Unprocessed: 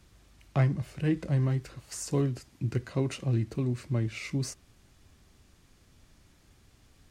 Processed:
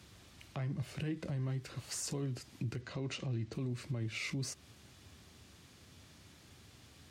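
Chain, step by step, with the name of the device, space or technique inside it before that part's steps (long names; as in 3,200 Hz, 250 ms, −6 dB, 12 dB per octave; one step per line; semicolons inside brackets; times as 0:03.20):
broadcast voice chain (high-pass filter 72 Hz 24 dB per octave; de-essing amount 75%; downward compressor 3 to 1, threshold −38 dBFS, peak gain reduction 13.5 dB; parametric band 3,600 Hz +4 dB 1.2 octaves; brickwall limiter −33 dBFS, peak gain reduction 10 dB)
0:02.81–0:03.53: low-pass filter 7,400 Hz 24 dB per octave
level +3 dB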